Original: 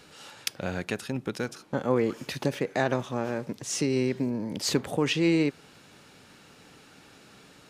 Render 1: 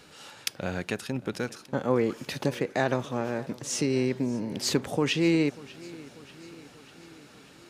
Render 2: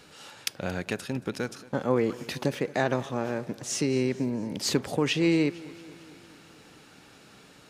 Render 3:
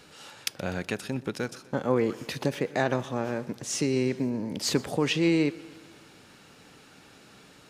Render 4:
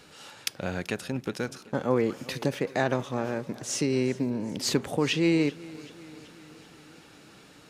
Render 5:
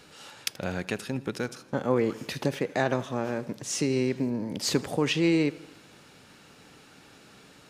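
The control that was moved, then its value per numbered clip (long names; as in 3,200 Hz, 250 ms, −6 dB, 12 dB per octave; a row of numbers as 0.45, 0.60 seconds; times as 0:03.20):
feedback echo with a swinging delay time, delay time: 591, 226, 124, 383, 81 milliseconds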